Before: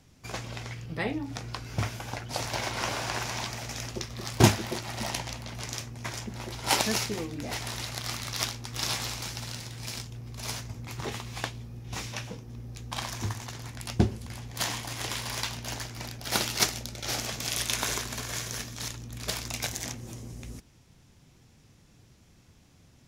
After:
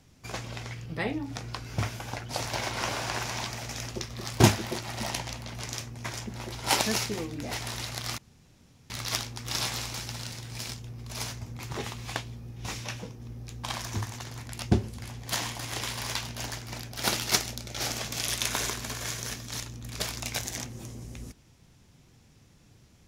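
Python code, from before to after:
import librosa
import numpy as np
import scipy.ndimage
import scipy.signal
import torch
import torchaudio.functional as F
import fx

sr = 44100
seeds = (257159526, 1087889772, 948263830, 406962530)

y = fx.edit(x, sr, fx.insert_room_tone(at_s=8.18, length_s=0.72), tone=tone)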